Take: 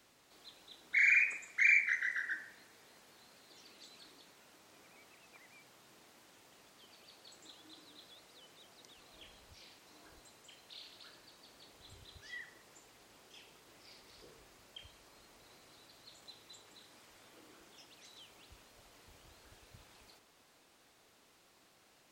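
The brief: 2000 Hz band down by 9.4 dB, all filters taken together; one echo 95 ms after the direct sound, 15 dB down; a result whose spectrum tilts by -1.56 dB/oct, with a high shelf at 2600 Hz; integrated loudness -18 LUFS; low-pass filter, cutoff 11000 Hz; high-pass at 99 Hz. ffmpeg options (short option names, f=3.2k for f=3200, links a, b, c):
-af "highpass=99,lowpass=11k,equalizer=f=2k:t=o:g=-8.5,highshelf=f=2.6k:g=-5,aecho=1:1:95:0.178,volume=22.5dB"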